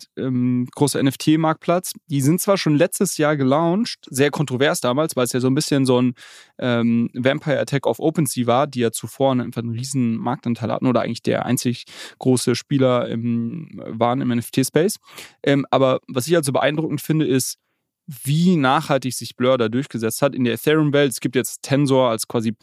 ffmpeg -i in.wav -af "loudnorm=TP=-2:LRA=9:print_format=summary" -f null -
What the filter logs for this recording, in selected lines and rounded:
Input Integrated:    -19.8 LUFS
Input True Peak:      -1.5 dBTP
Input LRA:             2.0 LU
Input Threshold:     -30.0 LUFS